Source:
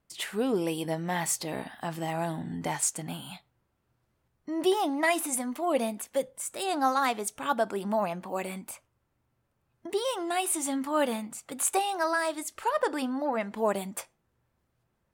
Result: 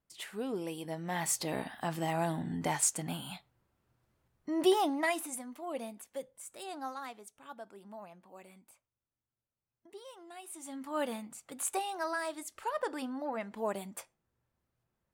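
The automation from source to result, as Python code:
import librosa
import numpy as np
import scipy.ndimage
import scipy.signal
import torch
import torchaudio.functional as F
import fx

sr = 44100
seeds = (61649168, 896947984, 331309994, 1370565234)

y = fx.gain(x, sr, db=fx.line((0.86, -9.0), (1.44, -1.0), (4.79, -1.0), (5.45, -12.0), (6.62, -12.0), (7.33, -20.0), (10.42, -20.0), (10.98, -7.5)))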